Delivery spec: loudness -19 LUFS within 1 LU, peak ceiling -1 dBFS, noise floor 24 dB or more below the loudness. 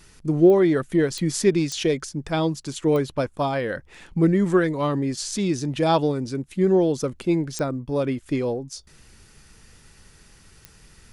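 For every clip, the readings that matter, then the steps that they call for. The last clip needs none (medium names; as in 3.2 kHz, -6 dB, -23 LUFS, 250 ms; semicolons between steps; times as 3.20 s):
clicks found 6; loudness -22.5 LUFS; peak level -6.0 dBFS; loudness target -19.0 LUFS
-> de-click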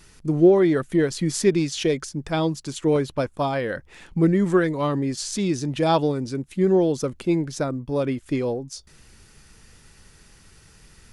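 clicks found 0; loudness -22.5 LUFS; peak level -6.0 dBFS; loudness target -19.0 LUFS
-> trim +3.5 dB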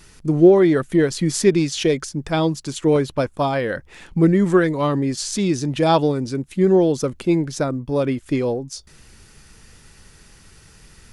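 loudness -19.0 LUFS; peak level -2.5 dBFS; noise floor -50 dBFS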